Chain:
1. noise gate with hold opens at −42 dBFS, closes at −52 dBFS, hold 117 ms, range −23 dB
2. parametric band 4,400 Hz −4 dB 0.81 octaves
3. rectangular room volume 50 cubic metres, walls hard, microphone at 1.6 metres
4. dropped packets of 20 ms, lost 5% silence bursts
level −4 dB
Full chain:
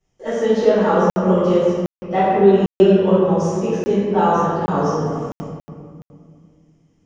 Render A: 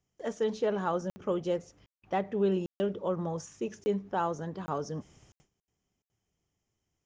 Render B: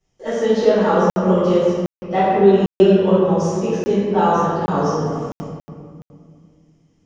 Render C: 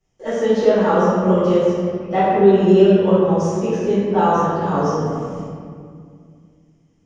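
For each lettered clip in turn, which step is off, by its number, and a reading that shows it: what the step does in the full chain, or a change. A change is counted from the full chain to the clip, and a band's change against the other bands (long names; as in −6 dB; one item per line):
3, change in momentary loudness spread −4 LU
2, 4 kHz band +2.0 dB
4, change in momentary loudness spread +1 LU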